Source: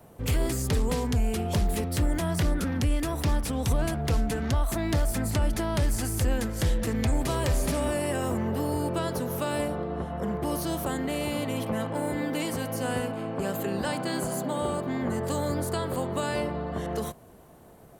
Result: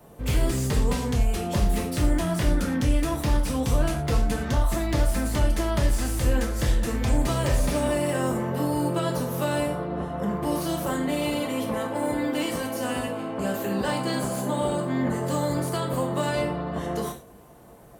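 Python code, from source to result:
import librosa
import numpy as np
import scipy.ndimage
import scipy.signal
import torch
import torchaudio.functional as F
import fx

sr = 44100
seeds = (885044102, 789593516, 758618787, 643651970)

y = fx.rev_gated(x, sr, seeds[0], gate_ms=140, shape='falling', drr_db=0.0)
y = fx.slew_limit(y, sr, full_power_hz=150.0)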